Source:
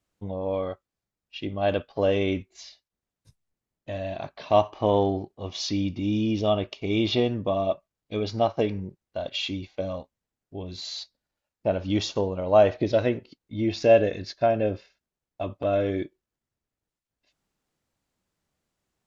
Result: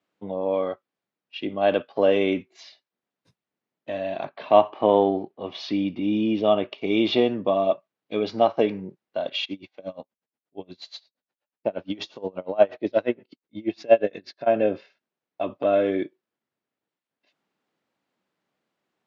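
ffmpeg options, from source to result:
ffmpeg -i in.wav -filter_complex "[0:a]asettb=1/sr,asplit=3[link_01][link_02][link_03];[link_01]atrim=end=4.254[link_04];[link_02]atrim=start=4.25:end=6.78,asetpts=PTS-STARTPTS,afade=type=in:duration=0.004:curve=qsin,afade=type=out:start_time=2.526:duration=0.004:curve=qsin,lowpass=3800[link_05];[link_03]atrim=start=6.776[link_06];[link_04][link_05]acrossfade=duration=0.004:curve1=hsin:curve2=qsin[link_07];[link_07][link_06]acrossfade=duration=0.004:curve1=qsin:curve2=hsin,asplit=3[link_08][link_09][link_10];[link_08]afade=type=out:start_time=9.44:duration=0.02[link_11];[link_09]aeval=exprs='val(0)*pow(10,-27*(0.5-0.5*cos(2*PI*8.4*n/s))/20)':channel_layout=same,afade=type=in:start_time=9.44:duration=0.02,afade=type=out:start_time=14.46:duration=0.02[link_12];[link_10]afade=type=in:start_time=14.46:duration=0.02[link_13];[link_11][link_12][link_13]amix=inputs=3:normalize=0,highpass=79,acrossover=split=170 4200:gain=0.0708 1 0.158[link_14][link_15][link_16];[link_14][link_15][link_16]amix=inputs=3:normalize=0,volume=4dB" out.wav

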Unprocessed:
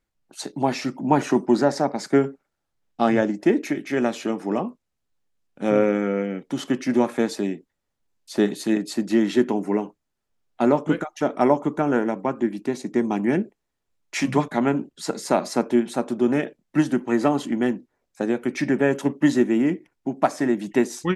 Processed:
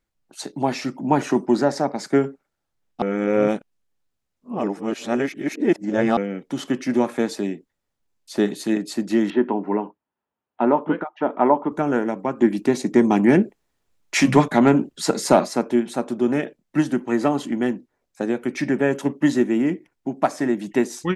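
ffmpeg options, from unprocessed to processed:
ffmpeg -i in.wav -filter_complex "[0:a]asettb=1/sr,asplit=3[link_01][link_02][link_03];[link_01]atrim=end=9.304[link_04];[link_02]atrim=start=9.3:end=11.72,asetpts=PTS-STARTPTS,afade=type=in:duration=0.004:curve=qsin,afade=type=out:start_time=2.416:duration=0.004:curve=qsin,highpass=130,equalizer=frequency=140:width_type=q:width=4:gain=-7,equalizer=frequency=930:width_type=q:width=4:gain=7,equalizer=frequency=2200:width_type=q:width=4:gain=-5,lowpass=frequency=2800:width=0.5412,lowpass=frequency=2800:width=1.3066[link_05];[link_03]atrim=start=11.716[link_06];[link_04][link_05]acrossfade=duration=0.004:curve1=hsin:curve2=qsin[link_07];[link_07][link_06]acrossfade=duration=0.004:curve1=qsin:curve2=hsin,asplit=3[link_08][link_09][link_10];[link_08]afade=type=out:start_time=12.4:duration=0.02[link_11];[link_09]acontrast=76,afade=type=in:start_time=12.4:duration=0.02,afade=type=out:start_time=15.44:duration=0.02[link_12];[link_10]afade=type=in:start_time=15.44:duration=0.02[link_13];[link_11][link_12][link_13]amix=inputs=3:normalize=0,asplit=3[link_14][link_15][link_16];[link_14]atrim=end=3.022[link_17];[link_15]atrim=start=3.018:end=6.172,asetpts=PTS-STARTPTS,areverse[link_18];[link_16]atrim=start=6.168[link_19];[link_17][link_18]acrossfade=duration=0.004:curve1=hsin:curve2=hsin[link_20];[link_20][link_19]acrossfade=duration=0.004:curve1=hsin:curve2=hsin" out.wav

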